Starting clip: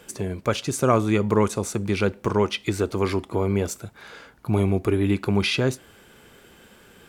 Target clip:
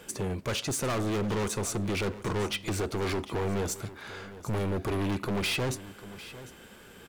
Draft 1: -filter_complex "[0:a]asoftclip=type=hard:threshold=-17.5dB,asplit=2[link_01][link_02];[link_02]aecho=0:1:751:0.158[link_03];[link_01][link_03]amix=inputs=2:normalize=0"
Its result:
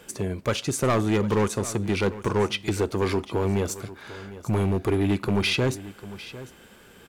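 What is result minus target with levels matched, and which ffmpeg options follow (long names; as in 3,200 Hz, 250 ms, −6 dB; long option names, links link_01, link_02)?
hard clipping: distortion −7 dB
-filter_complex "[0:a]asoftclip=type=hard:threshold=-27.5dB,asplit=2[link_01][link_02];[link_02]aecho=0:1:751:0.158[link_03];[link_01][link_03]amix=inputs=2:normalize=0"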